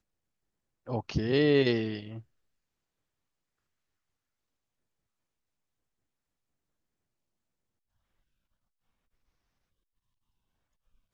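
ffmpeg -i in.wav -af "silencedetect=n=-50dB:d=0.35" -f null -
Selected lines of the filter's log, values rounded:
silence_start: 0.00
silence_end: 0.87 | silence_duration: 0.87
silence_start: 2.22
silence_end: 11.13 | silence_duration: 8.92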